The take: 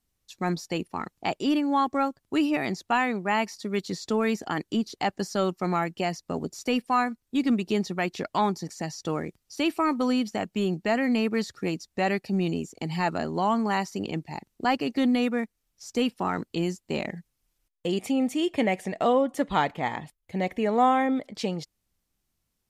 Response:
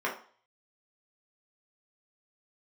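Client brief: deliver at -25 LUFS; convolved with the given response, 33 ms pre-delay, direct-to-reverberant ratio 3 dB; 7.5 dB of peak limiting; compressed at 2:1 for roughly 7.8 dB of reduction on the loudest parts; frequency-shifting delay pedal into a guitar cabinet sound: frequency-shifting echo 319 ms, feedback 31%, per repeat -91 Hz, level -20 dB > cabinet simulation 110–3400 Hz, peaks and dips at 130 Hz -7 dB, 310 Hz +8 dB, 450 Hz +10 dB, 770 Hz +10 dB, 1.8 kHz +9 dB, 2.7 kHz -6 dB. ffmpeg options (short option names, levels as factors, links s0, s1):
-filter_complex "[0:a]acompressor=threshold=0.0282:ratio=2,alimiter=level_in=1.06:limit=0.0631:level=0:latency=1,volume=0.944,asplit=2[s0][s1];[1:a]atrim=start_sample=2205,adelay=33[s2];[s1][s2]afir=irnorm=-1:irlink=0,volume=0.237[s3];[s0][s3]amix=inputs=2:normalize=0,asplit=3[s4][s5][s6];[s5]adelay=319,afreqshift=-91,volume=0.1[s7];[s6]adelay=638,afreqshift=-182,volume=0.0309[s8];[s4][s7][s8]amix=inputs=3:normalize=0,highpass=110,equalizer=f=130:t=q:w=4:g=-7,equalizer=f=310:t=q:w=4:g=8,equalizer=f=450:t=q:w=4:g=10,equalizer=f=770:t=q:w=4:g=10,equalizer=f=1800:t=q:w=4:g=9,equalizer=f=2700:t=q:w=4:g=-6,lowpass=f=3400:w=0.5412,lowpass=f=3400:w=1.3066,volume=1.41"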